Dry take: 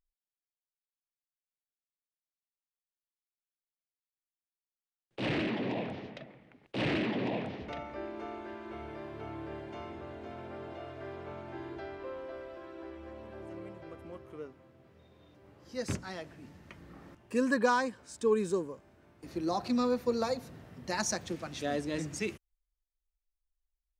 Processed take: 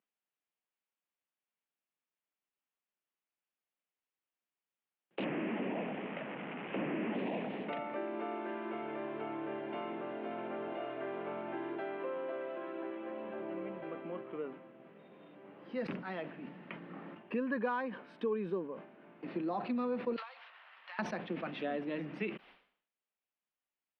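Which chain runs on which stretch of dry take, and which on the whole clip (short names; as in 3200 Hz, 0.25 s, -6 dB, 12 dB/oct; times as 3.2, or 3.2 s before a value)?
5.24–7.15 delta modulation 16 kbps, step -41 dBFS + HPF 45 Hz
20.16–20.99 CVSD 32 kbps + HPF 1000 Hz 24 dB/oct + compressor 10:1, threshold -47 dBFS
whole clip: compressor 3:1, threshold -41 dBFS; elliptic band-pass 180–2900 Hz, stop band 40 dB; sustainer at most 100 dB/s; gain +5.5 dB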